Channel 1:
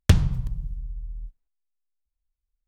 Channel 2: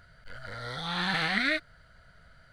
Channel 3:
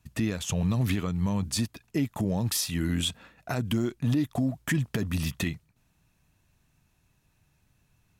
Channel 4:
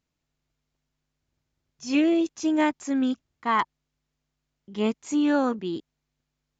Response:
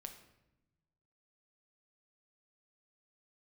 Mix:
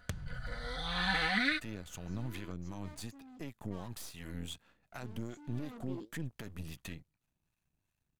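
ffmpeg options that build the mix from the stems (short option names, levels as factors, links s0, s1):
-filter_complex "[0:a]acompressor=threshold=0.0447:ratio=5,volume=0.282[s0];[1:a]aecho=1:1:4:0.89,volume=0.501[s1];[2:a]aeval=exprs='if(lt(val(0),0),0.251*val(0),val(0))':c=same,acrossover=split=720[s2][s3];[s2]aeval=exprs='val(0)*(1-0.5/2+0.5/2*cos(2*PI*2.7*n/s))':c=same[s4];[s3]aeval=exprs='val(0)*(1-0.5/2-0.5/2*cos(2*PI*2.7*n/s))':c=same[s5];[s4][s5]amix=inputs=2:normalize=0,adelay=1450,volume=0.316[s6];[3:a]equalizer=f=3300:t=o:w=0.77:g=-6,flanger=delay=8.3:depth=6.9:regen=73:speed=1.7:shape=sinusoidal,volume=44.7,asoftclip=hard,volume=0.0224,adelay=250,volume=0.447,afade=t=in:st=5.61:d=0.42:silence=0.237137[s7];[s0][s1][s6][s7]amix=inputs=4:normalize=0,bandreject=f=5400:w=17"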